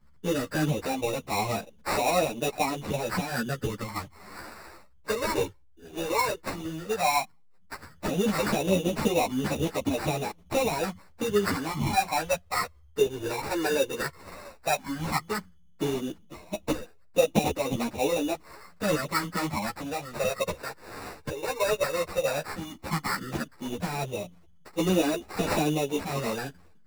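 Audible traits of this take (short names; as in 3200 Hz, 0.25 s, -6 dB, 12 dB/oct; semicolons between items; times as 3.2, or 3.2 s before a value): phasing stages 12, 0.13 Hz, lowest notch 210–2000 Hz; aliases and images of a low sample rate 3200 Hz, jitter 0%; a shimmering, thickened sound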